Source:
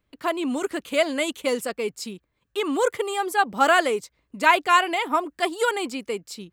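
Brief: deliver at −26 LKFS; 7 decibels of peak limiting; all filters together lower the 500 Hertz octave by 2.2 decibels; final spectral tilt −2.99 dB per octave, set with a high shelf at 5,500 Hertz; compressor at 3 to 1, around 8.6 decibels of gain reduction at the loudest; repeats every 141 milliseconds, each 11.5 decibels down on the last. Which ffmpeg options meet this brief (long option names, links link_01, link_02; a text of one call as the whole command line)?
ffmpeg -i in.wav -af "equalizer=frequency=500:width_type=o:gain=-3,highshelf=frequency=5500:gain=8.5,acompressor=threshold=-24dB:ratio=3,alimiter=limit=-19dB:level=0:latency=1,aecho=1:1:141|282|423:0.266|0.0718|0.0194,volume=4dB" out.wav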